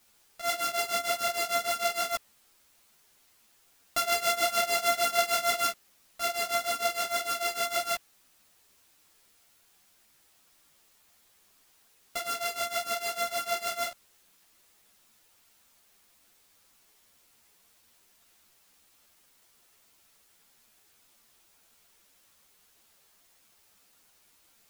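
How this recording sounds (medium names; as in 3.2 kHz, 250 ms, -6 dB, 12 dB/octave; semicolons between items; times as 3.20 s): a buzz of ramps at a fixed pitch in blocks of 64 samples; tremolo triangle 6.6 Hz, depth 95%; a quantiser's noise floor 12-bit, dither triangular; a shimmering, thickened sound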